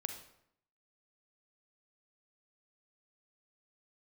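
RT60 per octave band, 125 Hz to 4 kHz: 0.80 s, 0.80 s, 0.75 s, 0.75 s, 0.65 s, 0.55 s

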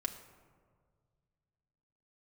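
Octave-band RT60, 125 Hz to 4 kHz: 3.0 s, 2.0 s, 2.0 s, 1.7 s, 1.2 s, 0.75 s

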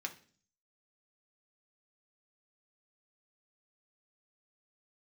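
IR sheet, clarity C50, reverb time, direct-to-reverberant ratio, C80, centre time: 14.0 dB, 0.45 s, 2.0 dB, 19.0 dB, 8 ms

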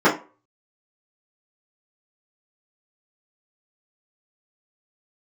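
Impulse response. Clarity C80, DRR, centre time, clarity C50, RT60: 17.0 dB, -11.0 dB, 23 ms, 11.0 dB, 0.35 s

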